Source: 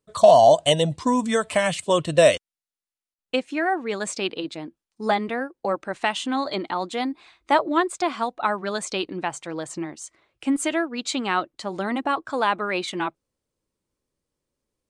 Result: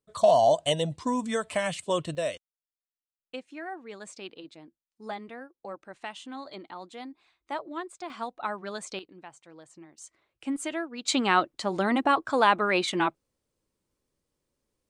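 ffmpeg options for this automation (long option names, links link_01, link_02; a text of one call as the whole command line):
ffmpeg -i in.wav -af "asetnsamples=nb_out_samples=441:pad=0,asendcmd='2.15 volume volume -15dB;8.1 volume volume -9dB;8.99 volume volume -19dB;9.98 volume volume -8.5dB;11.08 volume volume 1dB',volume=-7dB" out.wav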